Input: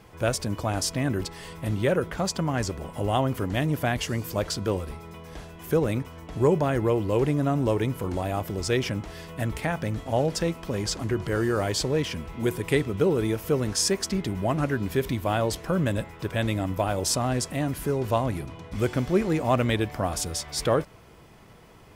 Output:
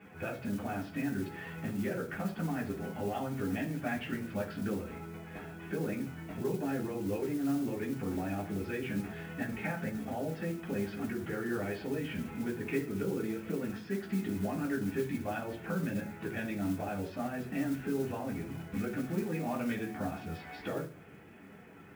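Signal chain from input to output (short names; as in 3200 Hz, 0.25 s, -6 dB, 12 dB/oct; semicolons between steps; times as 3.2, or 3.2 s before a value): bin magnitudes rounded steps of 15 dB; compressor, threshold -31 dBFS, peak gain reduction 14 dB; speaker cabinet 120–2600 Hz, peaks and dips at 160 Hz -5 dB, 310 Hz -5 dB, 510 Hz -7 dB, 1000 Hz -8 dB, 2100 Hz -6 dB; reverb RT60 0.50 s, pre-delay 3 ms, DRR -4 dB; modulation noise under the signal 21 dB; gain -4 dB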